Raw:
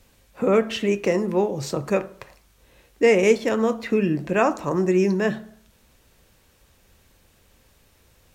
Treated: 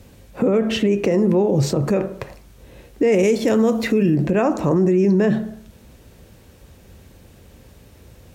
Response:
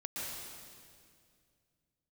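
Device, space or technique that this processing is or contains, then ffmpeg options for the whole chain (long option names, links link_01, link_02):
mastering chain: -filter_complex "[0:a]highpass=51,equalizer=frequency=1100:width_type=o:width=0.77:gain=-2.5,acompressor=threshold=-26dB:ratio=1.5,tiltshelf=frequency=740:gain=5.5,alimiter=level_in=19dB:limit=-1dB:release=50:level=0:latency=1,asettb=1/sr,asplit=3[link_01][link_02][link_03];[link_01]atrim=end=3.124[link_04];[link_02]atrim=start=3.12:end=4.16,asetpts=PTS-STARTPTS,afade=type=in:duration=0.004:curve=qsin,afade=type=out:start_time=1.036:duration=0.004:curve=qsin,highshelf=frequency=4400:gain=10.5[link_05];[link_03]atrim=start=4.156[link_06];[link_04][link_05]acrossfade=duration=0.004:curve1=hsin:curve2=qsin[link_07];[link_07][link_06]acrossfade=duration=0.004:curve1=qsin:curve2=hsin,volume=-8.5dB"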